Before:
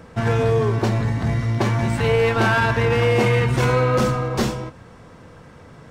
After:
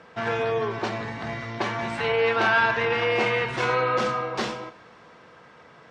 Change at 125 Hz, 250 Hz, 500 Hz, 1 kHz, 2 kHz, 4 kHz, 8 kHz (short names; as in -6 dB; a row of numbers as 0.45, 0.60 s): -17.5, -10.5, -5.0, -1.5, -0.5, -1.5, -9.5 dB